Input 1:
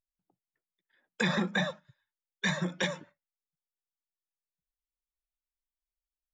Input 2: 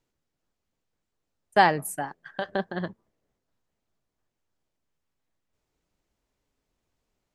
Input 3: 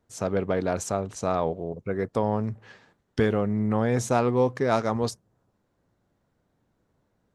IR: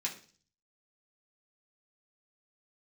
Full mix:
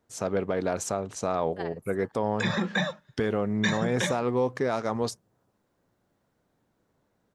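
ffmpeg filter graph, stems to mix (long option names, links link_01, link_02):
-filter_complex "[0:a]dynaudnorm=framelen=450:gausssize=7:maxgain=7dB,adelay=1200,volume=-1.5dB[link_01];[1:a]highpass=880,tremolo=f=18:d=0.72,volume=-16.5dB[link_02];[2:a]lowshelf=frequency=120:gain=-8.5,volume=1dB[link_03];[link_01][link_02][link_03]amix=inputs=3:normalize=0,alimiter=limit=-15dB:level=0:latency=1:release=161"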